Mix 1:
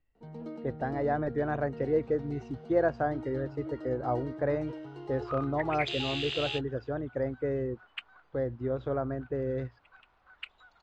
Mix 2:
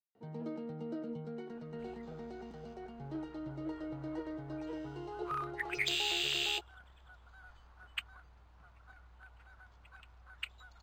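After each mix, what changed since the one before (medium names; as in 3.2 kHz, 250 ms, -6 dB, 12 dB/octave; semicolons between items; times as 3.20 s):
speech: muted; second sound: remove band-pass 240–3900 Hz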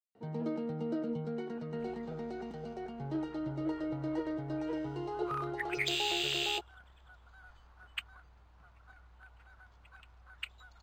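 first sound +5.5 dB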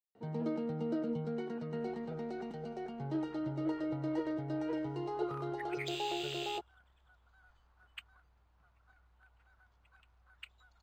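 second sound -9.0 dB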